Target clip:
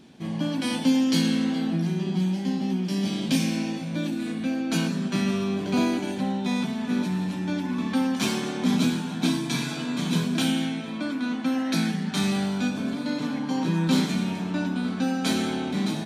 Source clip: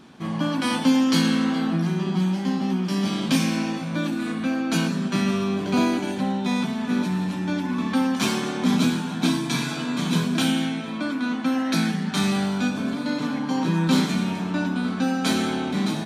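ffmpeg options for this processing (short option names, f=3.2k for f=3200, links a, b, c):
-af "asetnsamples=n=441:p=0,asendcmd='4.71 equalizer g -4',equalizer=f=1.2k:w=1.7:g=-10.5,volume=-2dB"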